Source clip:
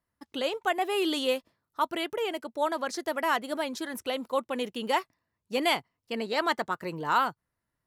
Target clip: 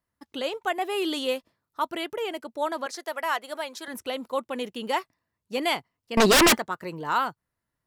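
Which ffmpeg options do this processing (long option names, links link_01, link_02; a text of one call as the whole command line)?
ffmpeg -i in.wav -filter_complex "[0:a]asettb=1/sr,asplit=3[link_01][link_02][link_03];[link_01]atrim=end=2.864[link_04];[link_02]atrim=start=2.86:end=3.88,asetpts=PTS-STARTPTS,afade=type=in:duration=0.004:curve=qsin,afade=type=out:start_time=1.016:duration=0.004:curve=qsin,highpass=520[link_05];[link_03]atrim=start=3.876[link_06];[link_04][link_05]acrossfade=duration=0.004:curve1=hsin:curve2=qsin[link_07];[link_07][link_06]acrossfade=duration=0.004:curve1=qsin:curve2=hsin,asettb=1/sr,asplit=3[link_08][link_09][link_10];[link_08]atrim=end=6.174[link_11];[link_09]atrim=start=6.17:end=6.58,asetpts=PTS-STARTPTS,afade=type=in:duration=0.004:curve=qsin,afade=type=out:start_time=0.406:duration=0.004:curve=qsin,aeval=exprs='0.211*sin(PI/2*7.94*val(0)/0.211)':channel_layout=same[link_12];[link_10]atrim=start=6.576[link_13];[link_11][link_12]acrossfade=duration=0.004:curve1=hsin:curve2=qsin[link_14];[link_14][link_13]acrossfade=duration=0.004:curve1=qsin:curve2=hsin" out.wav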